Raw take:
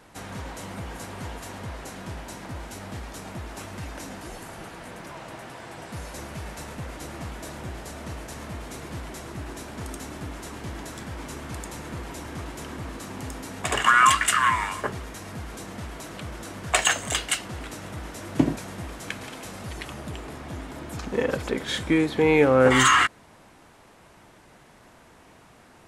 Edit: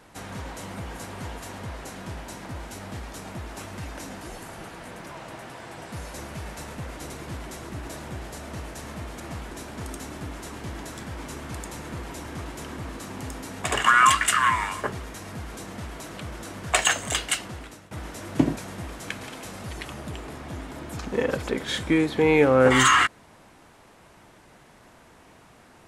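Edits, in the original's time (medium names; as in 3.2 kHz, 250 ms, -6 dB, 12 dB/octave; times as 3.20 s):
7.10–7.41 s: swap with 8.73–9.51 s
17.42–17.91 s: fade out, to -17 dB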